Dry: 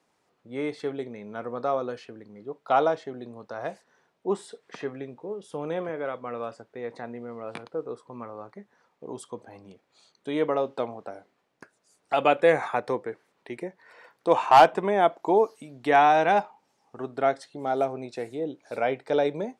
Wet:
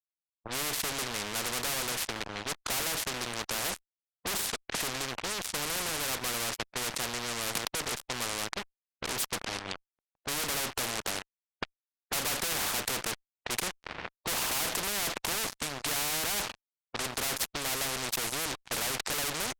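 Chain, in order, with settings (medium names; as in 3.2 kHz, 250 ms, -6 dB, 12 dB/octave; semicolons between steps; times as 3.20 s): fuzz box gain 41 dB, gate -48 dBFS; level-controlled noise filter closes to 810 Hz, open at -17 dBFS; spectrum-flattening compressor 4:1; trim -1.5 dB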